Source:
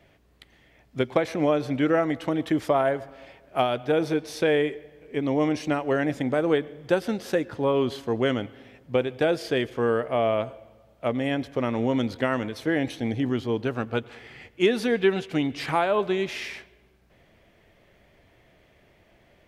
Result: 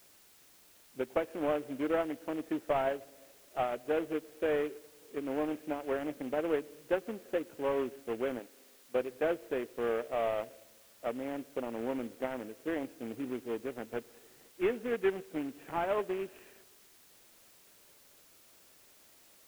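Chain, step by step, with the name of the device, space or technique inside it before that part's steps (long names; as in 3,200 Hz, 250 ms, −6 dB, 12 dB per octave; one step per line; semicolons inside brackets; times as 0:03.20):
adaptive Wiener filter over 41 samples
army field radio (band-pass filter 330–2,900 Hz; variable-slope delta modulation 16 kbit/s; white noise bed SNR 25 dB)
0:08.39–0:08.95: parametric band 85 Hz −14.5 dB 2.7 octaves
level −5.5 dB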